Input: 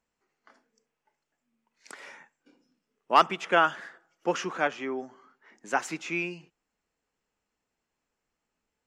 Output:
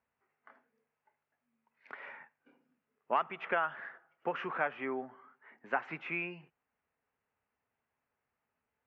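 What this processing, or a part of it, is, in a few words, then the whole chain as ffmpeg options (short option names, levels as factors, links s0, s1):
bass amplifier: -af "acompressor=threshold=0.0447:ratio=5,highpass=84,equalizer=f=90:t=q:w=4:g=5,equalizer=f=190:t=q:w=4:g=-8,equalizer=f=320:t=q:w=4:g=-10,equalizer=f=490:t=q:w=4:g=-3,lowpass=f=2400:w=0.5412,lowpass=f=2400:w=1.3066"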